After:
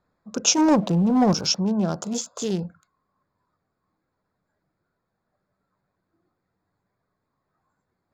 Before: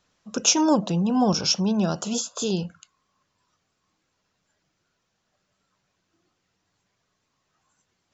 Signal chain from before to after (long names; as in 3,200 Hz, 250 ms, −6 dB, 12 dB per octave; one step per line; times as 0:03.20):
adaptive Wiener filter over 15 samples
0:00.58–0:01.34: leveller curve on the samples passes 1